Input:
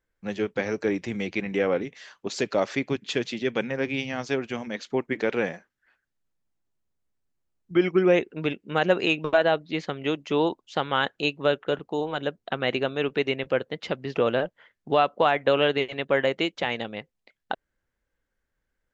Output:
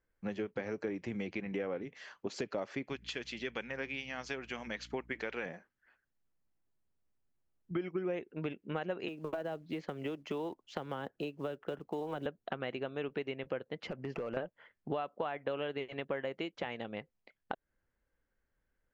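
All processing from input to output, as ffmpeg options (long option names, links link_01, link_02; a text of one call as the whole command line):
ffmpeg -i in.wav -filter_complex "[0:a]asettb=1/sr,asplit=3[link_01][link_02][link_03];[link_01]atrim=end=2.894[link_04];[link_02]atrim=start=2.89:end=5.46,asetpts=PTS-STARTPTS,afade=type=in:duration=0.004:curve=qsin,afade=type=out:start_time=2.566:duration=0.004:curve=qsin,tiltshelf=frequency=930:gain=-7,aeval=exprs='val(0)+0.00251*(sin(2*PI*60*n/s)+sin(2*PI*2*60*n/s)/2+sin(2*PI*3*60*n/s)/3+sin(2*PI*4*60*n/s)/4+sin(2*PI*5*60*n/s)/5)':channel_layout=same[link_05];[link_03]atrim=start=5.456[link_06];[link_04][link_05]acrossfade=duration=0.004:curve1=hsin:curve2=qsin[link_07];[link_07][link_06]acrossfade=duration=0.004:curve1=qsin:curve2=hsin,asettb=1/sr,asplit=3[link_08][link_09][link_10];[link_08]atrim=end=9.084[link_11];[link_09]atrim=start=9.08:end=12.26,asetpts=PTS-STARTPTS,afade=type=in:duration=0.004:curve=qsin,afade=type=out:start_time=3.176:duration=0.004:curve=qsin,acrossover=split=330|720[link_12][link_13][link_14];[link_12]acompressor=threshold=-37dB:ratio=4[link_15];[link_13]acompressor=threshold=-33dB:ratio=4[link_16];[link_14]acompressor=threshold=-38dB:ratio=4[link_17];[link_15][link_16][link_17]amix=inputs=3:normalize=0,acrusher=bits=6:mode=log:mix=0:aa=0.000001[link_18];[link_10]atrim=start=12.256[link_19];[link_11][link_18]acrossfade=duration=0.004:curve1=hsin:curve2=qsin[link_20];[link_20][link_19]acrossfade=duration=0.004:curve1=qsin:curve2=hsin,asettb=1/sr,asplit=3[link_21][link_22][link_23];[link_21]atrim=end=13.874[link_24];[link_22]atrim=start=13.87:end=14.37,asetpts=PTS-STARTPTS,afade=type=in:duration=0.004:curve=qsin,afade=type=out:start_time=0.496:duration=0.004:curve=qsin,equalizer=frequency=3700:width=4:gain=-14.5,acompressor=threshold=-31dB:ratio=4:attack=3.2:release=140:knee=1:detection=peak,asoftclip=type=hard:threshold=-28.5dB[link_25];[link_23]atrim=start=14.366[link_26];[link_24][link_25]acrossfade=duration=0.004:curve1=hsin:curve2=qsin[link_27];[link_27][link_26]acrossfade=duration=0.004:curve1=qsin:curve2=hsin,acompressor=threshold=-33dB:ratio=5,highshelf=frequency=3700:gain=-10,bandreject=frequency=3700:width=16,volume=-1.5dB" out.wav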